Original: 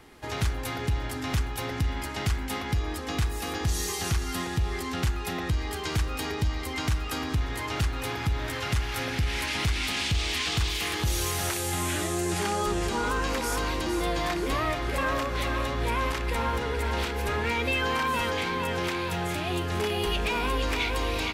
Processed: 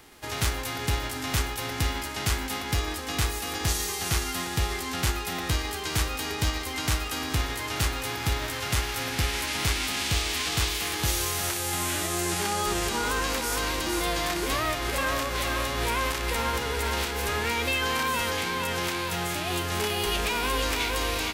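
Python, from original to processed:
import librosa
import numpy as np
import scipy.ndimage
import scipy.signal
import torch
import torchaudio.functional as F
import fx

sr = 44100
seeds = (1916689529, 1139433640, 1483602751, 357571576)

y = fx.envelope_flatten(x, sr, power=0.6)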